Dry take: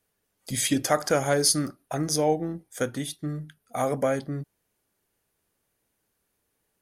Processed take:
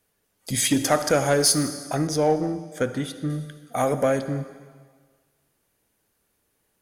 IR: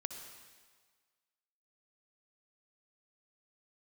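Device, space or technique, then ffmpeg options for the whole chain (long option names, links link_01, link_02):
saturated reverb return: -filter_complex "[0:a]asplit=2[link_01][link_02];[1:a]atrim=start_sample=2205[link_03];[link_02][link_03]afir=irnorm=-1:irlink=0,asoftclip=type=tanh:threshold=-22.5dB,volume=1dB[link_04];[link_01][link_04]amix=inputs=2:normalize=0,asettb=1/sr,asplit=3[link_05][link_06][link_07];[link_05]atrim=end=2.074[link_08];[link_06]atrim=start=2.07:end=3.3,asetpts=PTS-STARTPTS,afade=type=in:duration=0.004:curve=qsin,afade=type=out:start_time=1.226:duration=0.004:curve=qsin,highshelf=frequency=4700:gain=-11.5[link_09];[link_07]atrim=start=3.296[link_10];[link_08][link_09]acrossfade=duration=0.004:curve1=hsin:curve2=qsin[link_11];[link_11][link_10]acrossfade=duration=0.004:curve1=qsin:curve2=hsin,volume=-1dB"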